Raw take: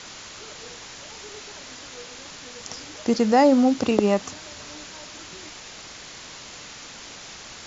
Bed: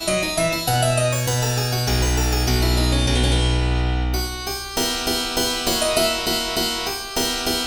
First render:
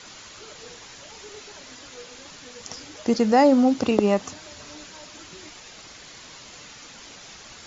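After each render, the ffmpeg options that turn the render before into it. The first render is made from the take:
-af "afftdn=nr=6:nf=-42"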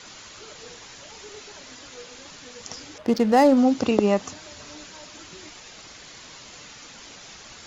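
-filter_complex "[0:a]asettb=1/sr,asplit=3[s0][s1][s2];[s0]atrim=end=2.984[s3];[s1]atrim=start=2.98:end=3.57,asetpts=PTS-STARTPTS,afade=t=in:d=0.004:c=qsin,afade=t=out:st=0.586:d=0.004:c=qsin,adynamicsmooth=sensitivity=6:basefreq=1500[s4];[s2]atrim=start=3.566[s5];[s3][s4]acrossfade=d=0.004:c1=hsin:c2=qsin[s6];[s6][s5]acrossfade=d=0.004:c1=qsin:c2=hsin"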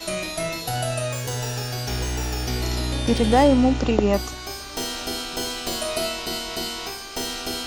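-filter_complex "[1:a]volume=0.447[s0];[0:a][s0]amix=inputs=2:normalize=0"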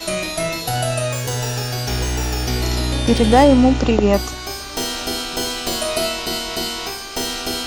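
-af "volume=1.78,alimiter=limit=0.794:level=0:latency=1"

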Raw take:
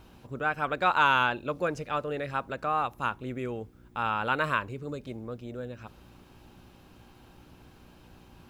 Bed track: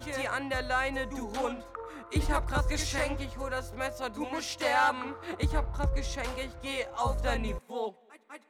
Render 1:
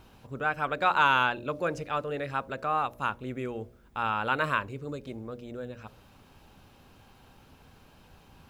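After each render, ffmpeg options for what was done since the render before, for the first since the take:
-af "bandreject=f=60:t=h:w=4,bandreject=f=120:t=h:w=4,bandreject=f=180:t=h:w=4,bandreject=f=240:t=h:w=4,bandreject=f=300:t=h:w=4,bandreject=f=360:t=h:w=4,bandreject=f=420:t=h:w=4,bandreject=f=480:t=h:w=4,bandreject=f=540:t=h:w=4,bandreject=f=600:t=h:w=4,bandreject=f=660:t=h:w=4"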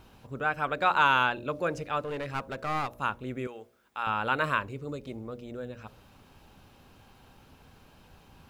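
-filter_complex "[0:a]asettb=1/sr,asplit=3[s0][s1][s2];[s0]atrim=end=2.044[s3];[s1]atrim=start=2.04:end=2.9,asetpts=PTS-STARTPTS,afade=t=in:d=0.004:c=qsin,afade=t=out:st=0.856:d=0.004:c=qsin,aeval=exprs='clip(val(0),-1,0.02)':c=same[s4];[s2]atrim=start=2.896[s5];[s3][s4]acrossfade=d=0.004:c1=hsin:c2=qsin[s6];[s6][s5]acrossfade=d=0.004:c1=qsin:c2=hsin,asettb=1/sr,asplit=3[s7][s8][s9];[s7]atrim=end=3.474[s10];[s8]atrim=start=3.47:end=4.07,asetpts=PTS-STARTPTS,afade=t=in:d=0.004:c=qsin,afade=t=out:st=0.596:d=0.004:c=qsin,highpass=f=930:p=1[s11];[s9]atrim=start=4.066[s12];[s10][s11]acrossfade=d=0.004:c1=hsin:c2=qsin[s13];[s13][s12]acrossfade=d=0.004:c1=qsin:c2=hsin,asettb=1/sr,asplit=3[s14][s15][s16];[s14]atrim=end=4.764[s17];[s15]atrim=start=4.76:end=5.5,asetpts=PTS-STARTPTS,afade=t=in:d=0.004:c=qsin,afade=t=out:st=0.736:d=0.004:c=qsin,bandreject=f=1600:w=12[s18];[s16]atrim=start=5.496[s19];[s17][s18]acrossfade=d=0.004:c1=hsin:c2=qsin[s20];[s20][s19]acrossfade=d=0.004:c1=qsin:c2=hsin"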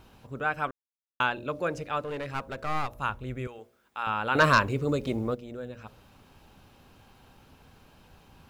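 -filter_complex "[0:a]asettb=1/sr,asplit=3[s0][s1][s2];[s0]atrim=end=2.244[s3];[s1]atrim=start=2.24:end=3.59,asetpts=PTS-STARTPTS,afade=t=in:d=0.004:c=qsin,afade=t=out:st=1.346:d=0.004:c=qsin,asubboost=boost=10.5:cutoff=110[s4];[s2]atrim=start=3.586[s5];[s3][s4]acrossfade=d=0.004:c1=hsin:c2=qsin[s6];[s6][s5]acrossfade=d=0.004:c1=qsin:c2=hsin,asettb=1/sr,asplit=3[s7][s8][s9];[s7]atrim=end=4.354[s10];[s8]atrim=start=4.35:end=5.35,asetpts=PTS-STARTPTS,afade=t=in:d=0.004:c=qsin,afade=t=out:st=0.996:d=0.004:c=qsin,aeval=exprs='0.251*sin(PI/2*2*val(0)/0.251)':c=same[s11];[s9]atrim=start=5.346[s12];[s10][s11]acrossfade=d=0.004:c1=hsin:c2=qsin[s13];[s13][s12]acrossfade=d=0.004:c1=qsin:c2=hsin,asplit=3[s14][s15][s16];[s14]atrim=end=0.71,asetpts=PTS-STARTPTS,afade=t=out:st=0.706:d=0.004:c=hsin[s17];[s15]atrim=start=0.71:end=1.2,asetpts=PTS-STARTPTS,volume=0[s18];[s16]atrim=start=1.2,asetpts=PTS-STARTPTS,afade=t=in:d=0.004:c=hsin[s19];[s17][s18][s19]concat=n=3:v=0:a=1"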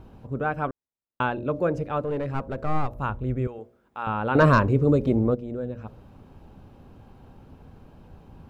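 -af "tiltshelf=f=1200:g=9.5"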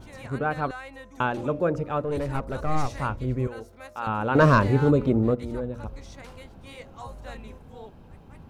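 -filter_complex "[1:a]volume=0.299[s0];[0:a][s0]amix=inputs=2:normalize=0"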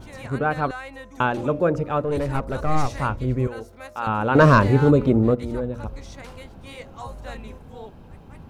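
-af "volume=1.58,alimiter=limit=0.794:level=0:latency=1"

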